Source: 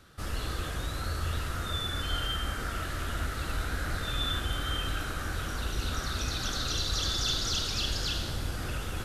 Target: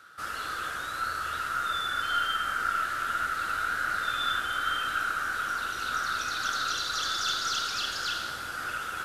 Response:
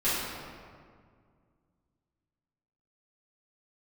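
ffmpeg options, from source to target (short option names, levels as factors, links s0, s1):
-filter_complex "[0:a]highpass=f=710:p=1,equalizer=f=1400:t=o:w=0.44:g=15,asplit=2[s0][s1];[s1]aeval=exprs='clip(val(0),-1,0.0119)':c=same,volume=0.266[s2];[s0][s2]amix=inputs=2:normalize=0,volume=0.794"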